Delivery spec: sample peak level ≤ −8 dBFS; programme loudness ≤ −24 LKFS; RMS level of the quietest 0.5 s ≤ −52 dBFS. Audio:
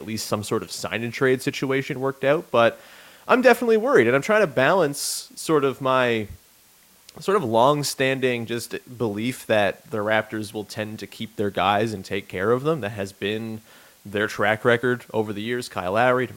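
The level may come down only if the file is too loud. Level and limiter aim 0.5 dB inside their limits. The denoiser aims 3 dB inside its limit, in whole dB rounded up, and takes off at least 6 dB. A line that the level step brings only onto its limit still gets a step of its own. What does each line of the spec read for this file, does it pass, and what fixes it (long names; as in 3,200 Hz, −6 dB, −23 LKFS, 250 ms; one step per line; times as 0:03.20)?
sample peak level −3.5 dBFS: out of spec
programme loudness −22.5 LKFS: out of spec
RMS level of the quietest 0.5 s −55 dBFS: in spec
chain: level −2 dB
brickwall limiter −8.5 dBFS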